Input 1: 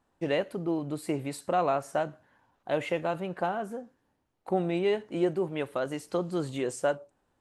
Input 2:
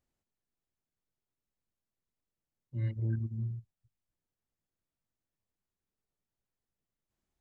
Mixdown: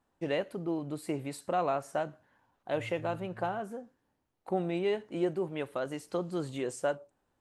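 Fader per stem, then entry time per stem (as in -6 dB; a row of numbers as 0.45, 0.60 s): -3.5, -14.0 dB; 0.00, 0.00 s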